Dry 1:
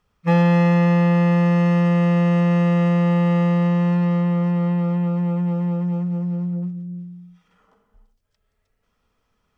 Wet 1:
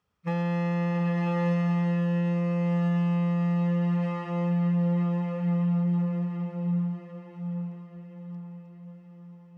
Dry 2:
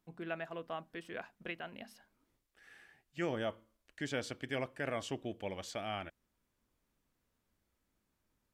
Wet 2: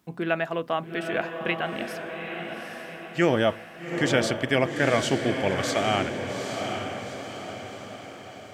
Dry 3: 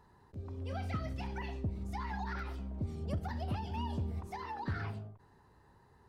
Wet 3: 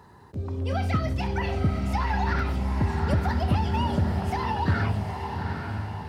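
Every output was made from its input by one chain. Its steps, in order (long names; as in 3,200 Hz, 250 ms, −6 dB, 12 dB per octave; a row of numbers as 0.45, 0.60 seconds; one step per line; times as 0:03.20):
high-pass filter 61 Hz 24 dB per octave
feedback delay with all-pass diffusion 820 ms, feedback 52%, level −5.5 dB
boost into a limiter +11.5 dB
loudness normalisation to −27 LKFS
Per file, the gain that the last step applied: −19.5, +3.0, +1.0 decibels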